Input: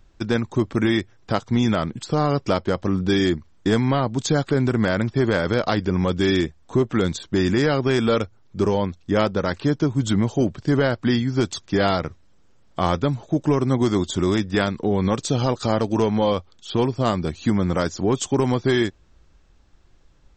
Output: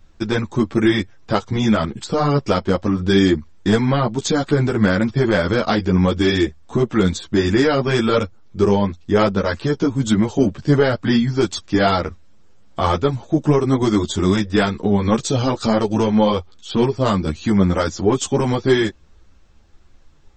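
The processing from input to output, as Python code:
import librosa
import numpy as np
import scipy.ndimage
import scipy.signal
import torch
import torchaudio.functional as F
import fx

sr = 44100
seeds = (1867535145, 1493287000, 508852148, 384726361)

y = fx.ensemble(x, sr)
y = F.gain(torch.from_numpy(y), 6.5).numpy()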